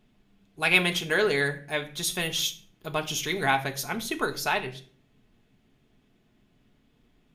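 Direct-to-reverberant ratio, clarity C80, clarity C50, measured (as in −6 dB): 4.0 dB, 19.0 dB, 15.0 dB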